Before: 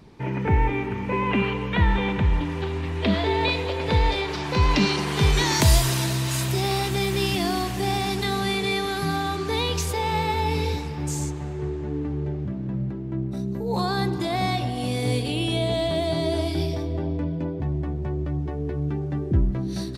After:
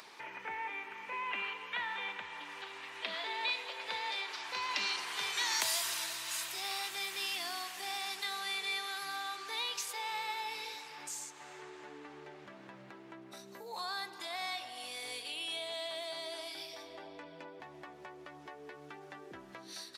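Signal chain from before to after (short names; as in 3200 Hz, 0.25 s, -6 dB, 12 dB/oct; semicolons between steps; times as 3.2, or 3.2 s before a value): HPF 1100 Hz 12 dB/oct; upward compressor, threshold -33 dBFS; gain -8 dB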